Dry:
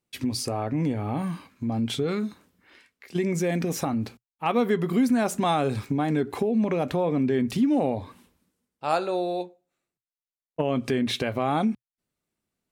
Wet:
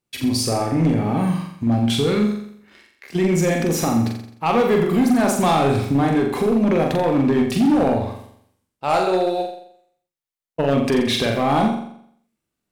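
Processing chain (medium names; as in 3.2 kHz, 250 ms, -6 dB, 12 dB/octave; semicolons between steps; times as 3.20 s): waveshaping leveller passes 1; flutter echo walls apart 7.4 m, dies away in 0.66 s; hard clipper -14.5 dBFS, distortion -17 dB; trim +2.5 dB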